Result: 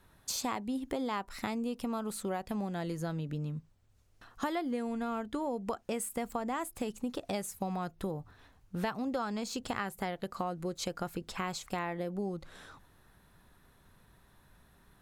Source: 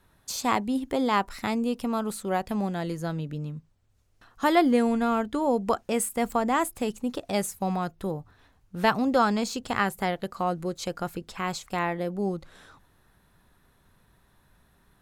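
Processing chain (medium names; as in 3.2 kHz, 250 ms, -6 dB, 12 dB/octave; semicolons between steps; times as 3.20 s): compression 6:1, threshold -32 dBFS, peak gain reduction 16 dB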